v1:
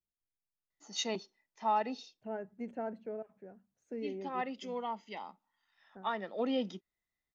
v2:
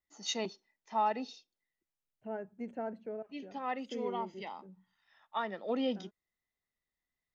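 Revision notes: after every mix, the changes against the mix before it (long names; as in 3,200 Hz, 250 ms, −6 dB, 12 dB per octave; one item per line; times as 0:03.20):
first voice: entry −0.70 s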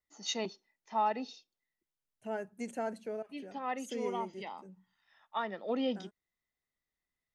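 second voice: remove head-to-tape spacing loss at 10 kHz 40 dB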